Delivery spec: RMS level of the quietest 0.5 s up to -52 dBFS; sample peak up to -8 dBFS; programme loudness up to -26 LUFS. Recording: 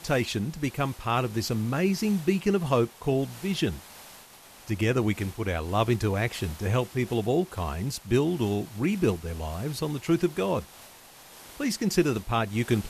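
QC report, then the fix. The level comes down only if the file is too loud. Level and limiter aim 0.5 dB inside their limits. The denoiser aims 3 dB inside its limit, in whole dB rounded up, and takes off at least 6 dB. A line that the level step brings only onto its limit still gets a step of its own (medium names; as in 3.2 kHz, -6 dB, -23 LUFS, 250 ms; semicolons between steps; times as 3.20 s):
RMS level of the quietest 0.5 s -50 dBFS: fail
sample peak -10.0 dBFS: pass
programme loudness -27.5 LUFS: pass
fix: noise reduction 6 dB, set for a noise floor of -50 dBFS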